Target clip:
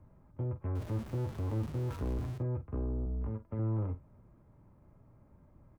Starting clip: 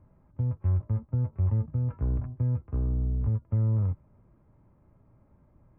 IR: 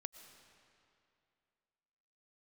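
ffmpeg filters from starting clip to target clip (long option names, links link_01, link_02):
-filter_complex "[0:a]asettb=1/sr,asplit=3[link_01][link_02][link_03];[link_01]atrim=end=0.754[link_04];[link_02]atrim=start=0.75:end=2.38,asetpts=PTS-STARTPTS,afade=type=in:duration=0.004:curve=qsin,afade=type=out:start_time=1.626:duration=0.004:curve=qsin,aeval=exprs='val(0)+0.5*0.00841*sgn(val(0))':channel_layout=same[link_05];[link_03]atrim=start=2.376[link_06];[link_04][link_05]acrossfade=duration=0.004:curve1=hsin:curve2=qsin[link_07];[link_07][link_06]acrossfade=duration=0.004:curve1=qsin:curve2=hsin,asettb=1/sr,asplit=3[link_08][link_09][link_10];[link_08]atrim=end=3.054[link_11];[link_09]atrim=start=3.05:end=3.59,asetpts=PTS-STARTPTS,afade=type=in:duration=0.004:curve=qsin,afade=type=out:start_time=0.536:duration=0.004:curve=qsin,equalizer=frequency=110:width=1.6:gain=-12.5[link_12];[link_10]atrim=start=3.586[link_13];[link_11][link_12]acrossfade=duration=0.004:curve1=hsin:curve2=qsin[link_14];[link_14][link_13]acrossfade=duration=0.004:curve1=qsin:curve2=hsin,acrossover=split=240[link_15][link_16];[link_15]asoftclip=type=tanh:threshold=-33.5dB[link_17];[link_17][link_16]amix=inputs=2:normalize=0,asplit=2[link_18][link_19];[link_19]adelay=46,volume=-12.5dB[link_20];[link_18][link_20]amix=inputs=2:normalize=0"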